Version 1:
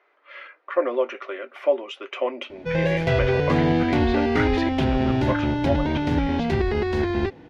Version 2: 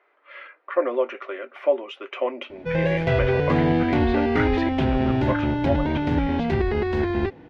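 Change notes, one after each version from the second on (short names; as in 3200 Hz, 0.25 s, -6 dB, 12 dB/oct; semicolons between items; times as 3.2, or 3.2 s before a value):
master: add tone controls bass 0 dB, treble -9 dB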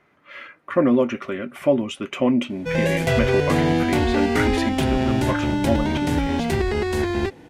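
speech: remove inverse Chebyshev high-pass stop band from 200 Hz, stop band 40 dB; master: remove air absorption 280 m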